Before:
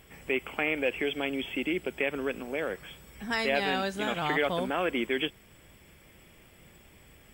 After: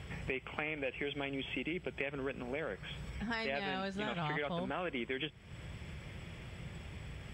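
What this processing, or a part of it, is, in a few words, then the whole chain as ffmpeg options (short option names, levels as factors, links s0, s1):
jukebox: -af "lowpass=5400,lowshelf=f=190:t=q:w=1.5:g=7,acompressor=threshold=0.00501:ratio=3,highpass=49,volume=2"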